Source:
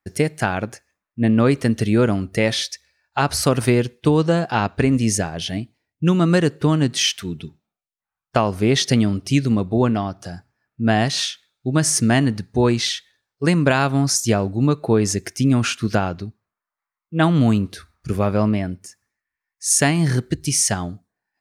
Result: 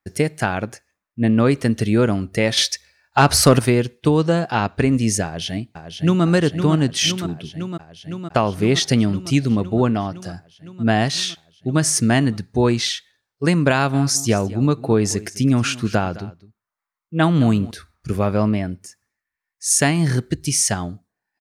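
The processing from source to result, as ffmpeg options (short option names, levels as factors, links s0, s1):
-filter_complex "[0:a]asettb=1/sr,asplit=3[s0][s1][s2];[s0]atrim=end=2.574[s3];[s1]atrim=start=2.57:end=3.59,asetpts=PTS-STARTPTS,afade=t=in:d=0.004:c=qsin,afade=t=out:st=1.016:d=0.004:c=qsin,acontrast=83[s4];[s2]atrim=start=3.586[s5];[s3][s4]acrossfade=d=0.004:c1=hsin:c2=qsin[s6];[s6][s5]acrossfade=d=0.004:c1=qsin:c2=hsin,asplit=2[s7][s8];[s8]afade=t=in:st=5.24:d=0.01,afade=t=out:st=6.24:d=0.01,aecho=0:1:510|1020|1530|2040|2550|3060|3570|4080|4590|5100|5610|6120:0.421697|0.337357|0.269886|0.215909|0.172727|0.138182|0.110545|0.0884362|0.0707489|0.0565991|0.0452793|0.0362235[s9];[s7][s9]amix=inputs=2:normalize=0,asettb=1/sr,asplit=3[s10][s11][s12];[s10]atrim=end=13.724[s13];[s11]atrim=start=13.72:end=17.71,asetpts=PTS-STARTPTS,afade=t=in:d=0.004:c=qsin,afade=t=out:st=3.986:d=0.004:c=qsin,aecho=1:1:211:0.119,atrim=end_sample=175959[s14];[s12]atrim=start=17.706[s15];[s13][s14]acrossfade=d=0.004:c1=hsin:c2=qsin[s16];[s16][s15]acrossfade=d=0.004:c1=qsin:c2=hsin"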